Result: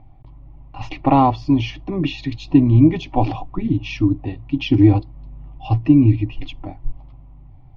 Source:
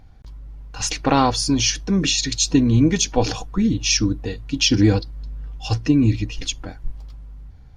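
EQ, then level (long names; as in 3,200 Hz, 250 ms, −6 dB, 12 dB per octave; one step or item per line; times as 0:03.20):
low-pass filter 2,400 Hz 24 dB per octave
phaser with its sweep stopped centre 310 Hz, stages 8
+5.0 dB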